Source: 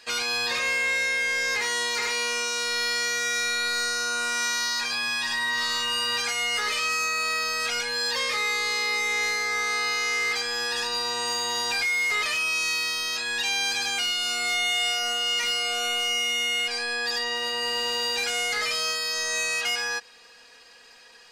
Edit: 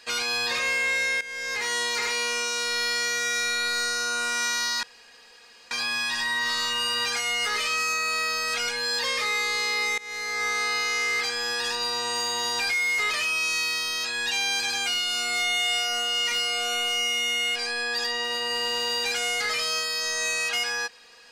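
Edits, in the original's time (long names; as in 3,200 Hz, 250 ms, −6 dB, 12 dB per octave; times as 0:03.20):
0:01.21–0:01.74: fade in, from −15.5 dB
0:04.83: splice in room tone 0.88 s
0:09.10–0:09.56: fade in, from −22 dB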